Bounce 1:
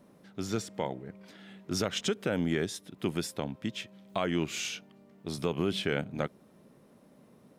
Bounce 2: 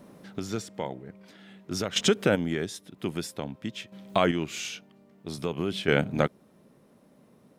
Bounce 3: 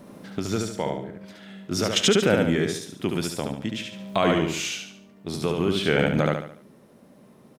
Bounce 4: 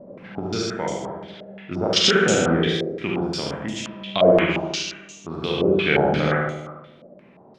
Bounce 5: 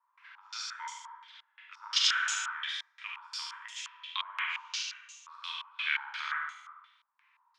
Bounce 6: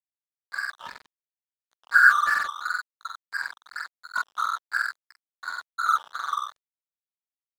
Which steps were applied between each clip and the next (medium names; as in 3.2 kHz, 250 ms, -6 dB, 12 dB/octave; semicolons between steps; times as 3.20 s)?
square tremolo 0.51 Hz, depth 60%, duty 20%; trim +8 dB
on a send: feedback delay 72 ms, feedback 40%, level -4 dB; on the sum: loudness maximiser +12.5 dB; trim -8 dB
Schroeder reverb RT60 1.1 s, combs from 33 ms, DRR -1 dB; step-sequenced low-pass 5.7 Hz 580–6900 Hz; trim -2.5 dB
Chebyshev high-pass 920 Hz, order 8; trim -7.5 dB
knee-point frequency compression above 1.1 kHz 4:1; crossover distortion -39 dBFS; trim +7.5 dB